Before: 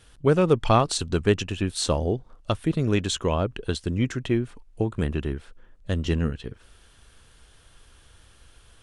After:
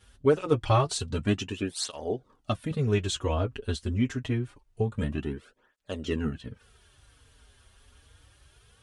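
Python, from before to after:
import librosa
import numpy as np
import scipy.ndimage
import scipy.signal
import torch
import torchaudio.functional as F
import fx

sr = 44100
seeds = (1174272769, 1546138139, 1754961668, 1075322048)

y = fx.notch_comb(x, sr, f0_hz=170.0)
y = fx.flanger_cancel(y, sr, hz=0.26, depth_ms=6.9)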